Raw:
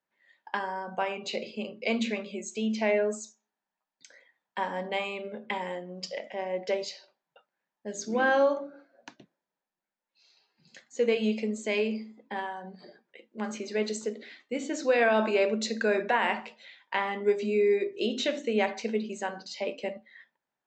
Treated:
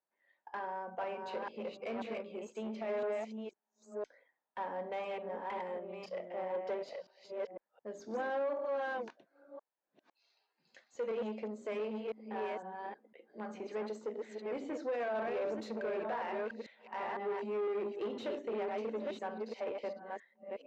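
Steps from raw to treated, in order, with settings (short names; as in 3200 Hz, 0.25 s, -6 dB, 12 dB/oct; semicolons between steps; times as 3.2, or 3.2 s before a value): reverse delay 0.505 s, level -4 dB; 8.65–11.1 tilt +2.5 dB/oct; limiter -19 dBFS, peak gain reduction 8 dB; tube stage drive 28 dB, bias 0.3; band-pass 620 Hz, Q 0.74; gain -2.5 dB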